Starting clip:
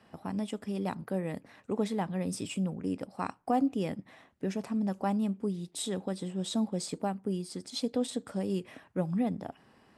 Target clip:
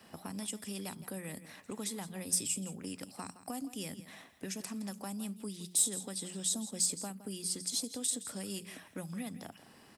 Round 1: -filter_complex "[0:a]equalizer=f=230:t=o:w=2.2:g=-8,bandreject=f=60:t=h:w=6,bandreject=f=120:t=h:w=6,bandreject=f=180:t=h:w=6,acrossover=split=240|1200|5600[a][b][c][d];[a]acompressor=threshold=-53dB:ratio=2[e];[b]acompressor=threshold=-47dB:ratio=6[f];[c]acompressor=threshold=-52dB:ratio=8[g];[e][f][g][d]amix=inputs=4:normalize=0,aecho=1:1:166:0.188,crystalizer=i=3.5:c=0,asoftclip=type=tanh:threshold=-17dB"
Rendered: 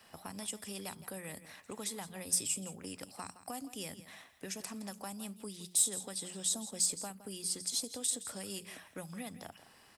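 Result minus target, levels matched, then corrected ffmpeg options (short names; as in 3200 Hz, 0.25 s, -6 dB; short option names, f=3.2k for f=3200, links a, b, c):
250 Hz band -4.5 dB
-filter_complex "[0:a]equalizer=f=230:t=o:w=2.2:g=2.5,bandreject=f=60:t=h:w=6,bandreject=f=120:t=h:w=6,bandreject=f=180:t=h:w=6,acrossover=split=240|1200|5600[a][b][c][d];[a]acompressor=threshold=-53dB:ratio=2[e];[b]acompressor=threshold=-47dB:ratio=6[f];[c]acompressor=threshold=-52dB:ratio=8[g];[e][f][g][d]amix=inputs=4:normalize=0,aecho=1:1:166:0.188,crystalizer=i=3.5:c=0,asoftclip=type=tanh:threshold=-17dB"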